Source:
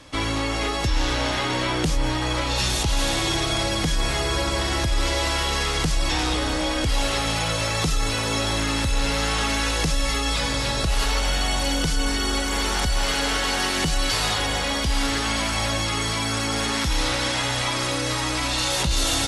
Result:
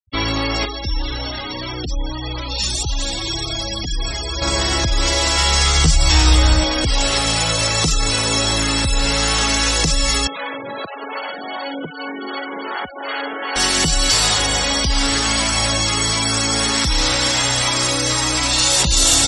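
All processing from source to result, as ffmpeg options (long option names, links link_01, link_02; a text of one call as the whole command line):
ffmpeg -i in.wav -filter_complex "[0:a]asettb=1/sr,asplit=3[link_01][link_02][link_03];[link_01]atrim=end=0.654[link_04];[link_02]atrim=start=0.65:end=4.42,asetpts=PTS-STARTPTS,afade=type=in:duration=0.004:curve=qsin,afade=type=out:start_time=3.766:duration=0.004:curve=qsin,acrossover=split=160|3000[link_05][link_06][link_07];[link_06]acompressor=threshold=-33dB:ratio=1.5:attack=3.2:release=140:knee=2.83:detection=peak[link_08];[link_05][link_08][link_07]amix=inputs=3:normalize=0,flanger=delay=2.2:depth=1.9:regen=-50:speed=1.8:shape=triangular[link_09];[link_03]atrim=start=4.416[link_10];[link_04][link_09]acrossfade=duration=0.004:curve1=hsin:curve2=qsin[link_11];[link_11][link_10]acrossfade=duration=0.004:curve1=qsin:curve2=hsin,asettb=1/sr,asplit=3[link_12][link_13][link_14];[link_12]atrim=end=5.364[link_15];[link_13]atrim=start=5.36:end=6.64,asetpts=PTS-STARTPTS,afade=type=in:duration=0.004:curve=qsin,afade=type=out:start_time=1.276:duration=0.004:curve=qsin,asubboost=boost=10.5:cutoff=120,asplit=2[link_16][link_17];[link_17]adelay=13,volume=-4.5dB[link_18];[link_16][link_18]amix=inputs=2:normalize=0,atrim=end_sample=56448[link_19];[link_14]atrim=start=6.636[link_20];[link_15][link_19]acrossfade=duration=0.004:curve1=hsin:curve2=qsin[link_21];[link_21][link_20]acrossfade=duration=0.004:curve1=qsin:curve2=hsin,asettb=1/sr,asplit=3[link_22][link_23][link_24];[link_22]atrim=end=10.274[link_25];[link_23]atrim=start=10.27:end=13.56,asetpts=PTS-STARTPTS,afade=type=in:duration=0.004:curve=qsin,afade=type=out:start_time=3.286:duration=0.004:curve=qsin,highpass=290,lowpass=2200,acrossover=split=560[link_26][link_27];[link_26]aeval=exprs='val(0)*(1-0.5/2+0.5/2*cos(2*PI*2.6*n/s))':channel_layout=same[link_28];[link_27]aeval=exprs='val(0)*(1-0.5/2-0.5/2*cos(2*PI*2.6*n/s))':channel_layout=same[link_29];[link_28][link_29]amix=inputs=2:normalize=0[link_30];[link_24]atrim=start=13.556[link_31];[link_25][link_30]acrossfade=duration=0.004:curve1=hsin:curve2=qsin[link_32];[link_32][link_31]acrossfade=duration=0.004:curve1=qsin:curve2=hsin,bandreject=frequency=6500:width=17,afftfilt=real='re*gte(hypot(re,im),0.0355)':imag='im*gte(hypot(re,im),0.0355)':win_size=1024:overlap=0.75,equalizer=frequency=7200:width=1.1:gain=12.5,volume=4dB" out.wav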